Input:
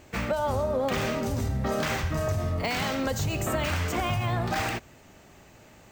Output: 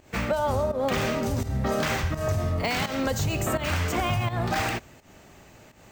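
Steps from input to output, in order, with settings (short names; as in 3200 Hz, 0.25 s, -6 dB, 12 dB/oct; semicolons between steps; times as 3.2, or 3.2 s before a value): pump 84 bpm, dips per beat 1, -13 dB, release 0.166 s; gain +2 dB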